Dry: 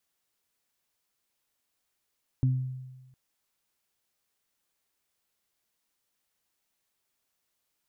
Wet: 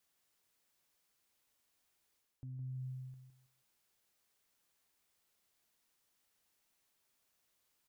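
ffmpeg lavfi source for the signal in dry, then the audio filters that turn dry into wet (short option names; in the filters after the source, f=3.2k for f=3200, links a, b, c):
-f lavfi -i "aevalsrc='0.106*pow(10,-3*t/1.19)*sin(2*PI*129*t)+0.0355*pow(10,-3*t/0.43)*sin(2*PI*258*t)':d=0.71:s=44100"
-af "areverse,acompressor=threshold=-37dB:ratio=6,areverse,alimiter=level_in=18dB:limit=-24dB:level=0:latency=1,volume=-18dB,aecho=1:1:162|324|486:0.422|0.114|0.0307"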